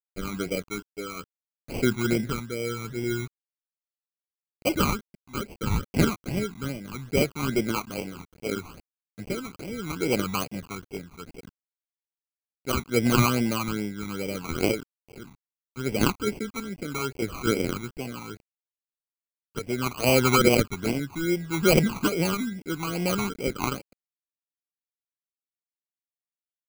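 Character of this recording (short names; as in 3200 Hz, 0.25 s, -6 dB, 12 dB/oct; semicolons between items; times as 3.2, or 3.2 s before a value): a quantiser's noise floor 8-bit, dither none; tremolo triangle 0.7 Hz, depth 70%; aliases and images of a low sample rate 1800 Hz, jitter 0%; phasing stages 12, 2.4 Hz, lowest notch 520–1300 Hz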